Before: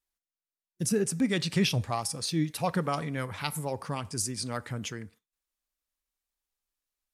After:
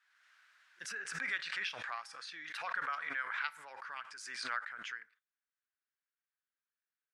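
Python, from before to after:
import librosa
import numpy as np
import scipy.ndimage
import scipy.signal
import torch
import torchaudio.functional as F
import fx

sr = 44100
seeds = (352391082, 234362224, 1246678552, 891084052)

y = fx.ladder_bandpass(x, sr, hz=1700.0, resonance_pct=65)
y = fx.pre_swell(y, sr, db_per_s=38.0)
y = y * librosa.db_to_amplitude(5.0)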